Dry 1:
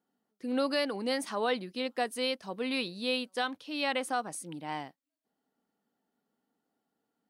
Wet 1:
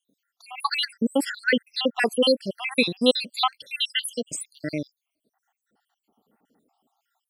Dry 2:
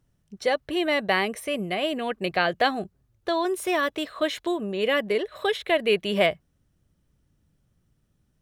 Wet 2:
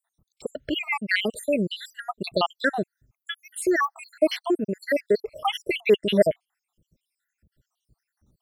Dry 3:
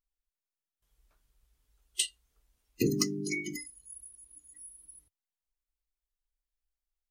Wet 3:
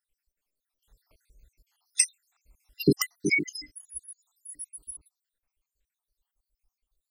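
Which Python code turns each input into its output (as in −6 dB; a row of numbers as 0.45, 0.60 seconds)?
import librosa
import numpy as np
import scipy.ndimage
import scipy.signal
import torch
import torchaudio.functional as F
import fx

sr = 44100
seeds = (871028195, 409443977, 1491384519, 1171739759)

y = fx.spec_dropout(x, sr, seeds[0], share_pct=76)
y = y * 10.0 ** (-6 / 20.0) / np.max(np.abs(y))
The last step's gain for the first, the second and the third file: +15.5, +6.0, +12.5 decibels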